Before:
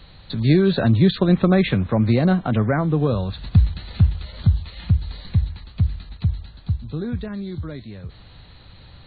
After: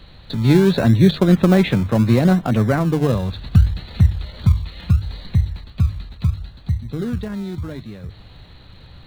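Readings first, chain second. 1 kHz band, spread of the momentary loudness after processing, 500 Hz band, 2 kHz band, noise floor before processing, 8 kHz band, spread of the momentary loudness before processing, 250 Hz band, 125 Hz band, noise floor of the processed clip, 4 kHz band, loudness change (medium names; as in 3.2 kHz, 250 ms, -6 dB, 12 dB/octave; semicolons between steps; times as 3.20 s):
+2.0 dB, 15 LU, +2.5 dB, +2.0 dB, -46 dBFS, no reading, 14 LU, +3.0 dB, +2.5 dB, -43 dBFS, +1.5 dB, +2.5 dB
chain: hum notches 50/100/150 Hz; in parallel at -10.5 dB: decimation with a swept rate 31×, swing 60% 0.7 Hz; on the sum: trim +1 dB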